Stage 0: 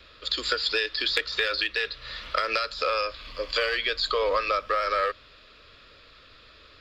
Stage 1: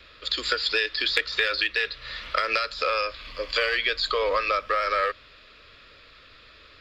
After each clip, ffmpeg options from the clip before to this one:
-af "equalizer=f=2.1k:w=1.7:g=4"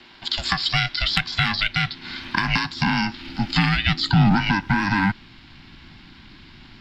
-af "aeval=exprs='val(0)*sin(2*PI*300*n/s)':c=same,asubboost=boost=11:cutoff=150,volume=5.5dB"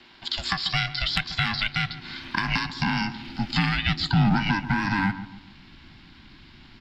-filter_complex "[0:a]asplit=2[a][b];[b]adelay=140,lowpass=f=1.2k:p=1,volume=-11.5dB,asplit=2[c][d];[d]adelay=140,lowpass=f=1.2k:p=1,volume=0.43,asplit=2[e][f];[f]adelay=140,lowpass=f=1.2k:p=1,volume=0.43,asplit=2[g][h];[h]adelay=140,lowpass=f=1.2k:p=1,volume=0.43[i];[a][c][e][g][i]amix=inputs=5:normalize=0,volume=-4dB"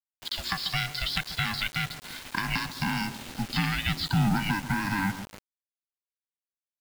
-af "acrusher=bits=5:mix=0:aa=0.000001,volume=-4dB"

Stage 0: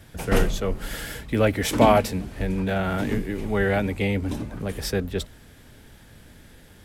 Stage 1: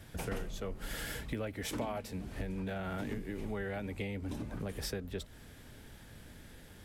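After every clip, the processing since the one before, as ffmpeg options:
-af "acompressor=threshold=-31dB:ratio=8,volume=-4dB"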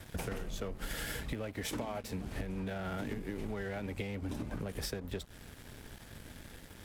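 -af "acompressor=threshold=-40dB:ratio=6,aeval=exprs='sgn(val(0))*max(abs(val(0))-0.00133,0)':c=same,volume=6.5dB"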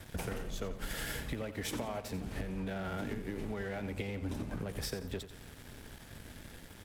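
-af "aecho=1:1:88|176|264|352:0.251|0.0955|0.0363|0.0138"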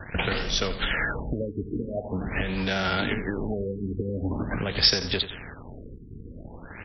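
-af "crystalizer=i=9:c=0,afftfilt=real='re*lt(b*sr/1024,450*pow(6000/450,0.5+0.5*sin(2*PI*0.45*pts/sr)))':imag='im*lt(b*sr/1024,450*pow(6000/450,0.5+0.5*sin(2*PI*0.45*pts/sr)))':win_size=1024:overlap=0.75,volume=9dB"

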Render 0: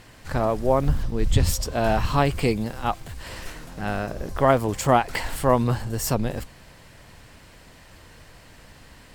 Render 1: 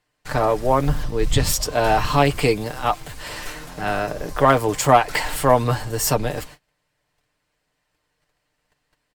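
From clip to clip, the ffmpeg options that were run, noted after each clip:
-filter_complex "[0:a]agate=range=-29dB:threshold=-42dB:ratio=16:detection=peak,aecho=1:1:6.7:0.49,acrossover=split=350[a][b];[b]acontrast=62[c];[a][c]amix=inputs=2:normalize=0,volume=-1dB"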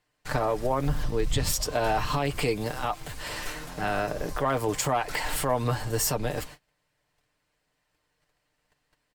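-af "alimiter=limit=-13.5dB:level=0:latency=1:release=160,volume=-2.5dB"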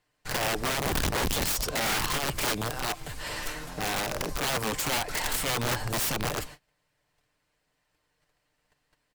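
-af "aeval=exprs='(mod(13.3*val(0)+1,2)-1)/13.3':c=same"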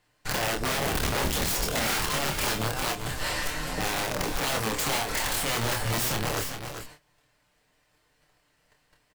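-filter_complex "[0:a]acompressor=threshold=-32dB:ratio=6,asplit=2[a][b];[b]adelay=27,volume=-5dB[c];[a][c]amix=inputs=2:normalize=0,asplit=2[d][e];[e]aecho=0:1:44|382|398:0.178|0.237|0.355[f];[d][f]amix=inputs=2:normalize=0,volume=5dB"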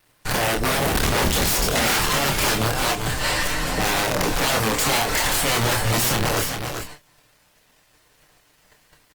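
-af "acrusher=bits=10:mix=0:aa=0.000001,asoftclip=type=tanh:threshold=-22.5dB,volume=9dB" -ar 48000 -c:a libopus -b:a 32k

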